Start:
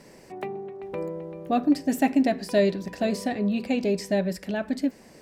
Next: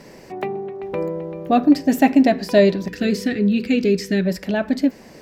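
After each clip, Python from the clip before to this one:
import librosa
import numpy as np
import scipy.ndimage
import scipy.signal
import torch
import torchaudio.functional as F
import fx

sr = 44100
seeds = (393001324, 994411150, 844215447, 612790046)

y = fx.spec_box(x, sr, start_s=2.89, length_s=1.37, low_hz=510.0, high_hz=1200.0, gain_db=-16)
y = fx.peak_eq(y, sr, hz=9100.0, db=-9.0, octaves=0.52)
y = y * librosa.db_to_amplitude(7.5)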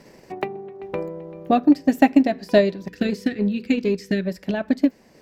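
y = fx.transient(x, sr, attack_db=8, sustain_db=-4)
y = y * librosa.db_to_amplitude(-6.5)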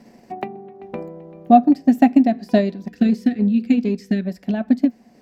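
y = fx.small_body(x, sr, hz=(230.0, 720.0), ring_ms=70, db=14)
y = y * librosa.db_to_amplitude(-4.5)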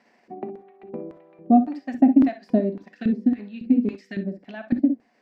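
y = fx.filter_lfo_bandpass(x, sr, shape='square', hz=1.8, low_hz=290.0, high_hz=1800.0, q=0.95)
y = fx.rev_gated(y, sr, seeds[0], gate_ms=80, shape='rising', drr_db=9.5)
y = y * librosa.db_to_amplitude(-2.0)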